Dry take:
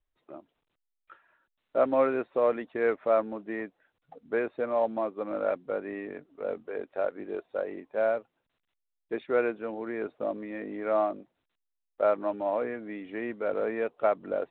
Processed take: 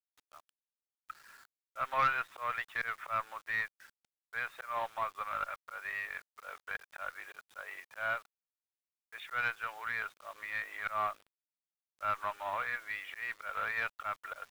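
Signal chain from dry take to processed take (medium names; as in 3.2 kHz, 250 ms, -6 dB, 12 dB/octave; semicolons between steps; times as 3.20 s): slow attack 194 ms; in parallel at -2 dB: compression 6:1, threshold -38 dBFS, peak gain reduction 17.5 dB; on the sum: Chebyshev high-pass 1.2 kHz, order 3; valve stage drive 26 dB, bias 0.4; bit crusher 11-bit; trim +7.5 dB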